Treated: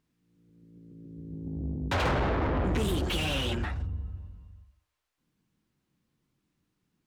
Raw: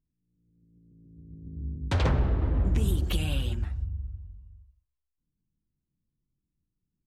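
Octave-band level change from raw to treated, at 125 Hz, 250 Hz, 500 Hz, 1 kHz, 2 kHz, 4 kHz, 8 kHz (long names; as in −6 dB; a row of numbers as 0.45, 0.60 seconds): −4.0, +2.0, +5.0, +7.0, +6.5, +5.0, +2.0 decibels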